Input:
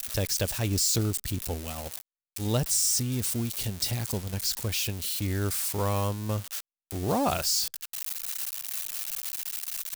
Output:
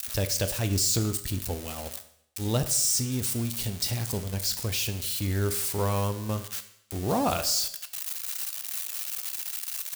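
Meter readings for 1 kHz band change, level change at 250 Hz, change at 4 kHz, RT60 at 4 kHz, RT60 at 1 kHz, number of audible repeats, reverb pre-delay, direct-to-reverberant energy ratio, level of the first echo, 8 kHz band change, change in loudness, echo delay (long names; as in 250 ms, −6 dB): +0.5 dB, +0.5 dB, +0.5 dB, 0.70 s, 0.75 s, no echo audible, 10 ms, 8.5 dB, no echo audible, +0.5 dB, +0.5 dB, no echo audible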